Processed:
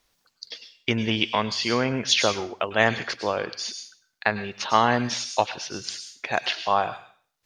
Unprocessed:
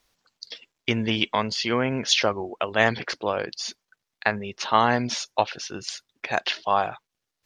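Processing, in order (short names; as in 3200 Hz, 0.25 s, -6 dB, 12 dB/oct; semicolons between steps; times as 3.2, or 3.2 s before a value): on a send: pre-emphasis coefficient 0.9 + reverb RT60 0.50 s, pre-delay 92 ms, DRR 13 dB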